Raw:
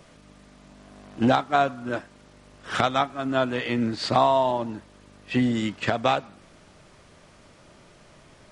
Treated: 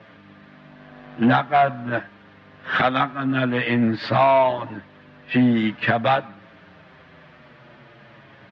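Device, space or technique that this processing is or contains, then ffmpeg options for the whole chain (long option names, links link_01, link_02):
barber-pole flanger into a guitar amplifier: -filter_complex "[0:a]asplit=2[link_01][link_02];[link_02]adelay=7,afreqshift=-0.47[link_03];[link_01][link_03]amix=inputs=2:normalize=1,asoftclip=type=tanh:threshold=-18dB,highpass=110,equalizer=frequency=130:width_type=q:width=4:gain=4,equalizer=frequency=400:width_type=q:width=4:gain=-4,equalizer=frequency=1700:width_type=q:width=4:gain=7,lowpass=frequency=3500:width=0.5412,lowpass=frequency=3500:width=1.3066,volume=8dB"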